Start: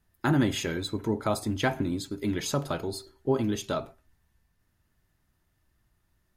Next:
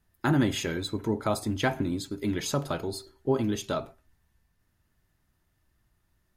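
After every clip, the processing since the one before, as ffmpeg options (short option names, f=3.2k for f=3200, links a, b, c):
-af anull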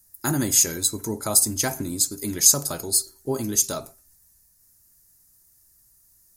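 -af "aexciter=amount=10.6:drive=7.8:freq=4.9k,volume=-1dB"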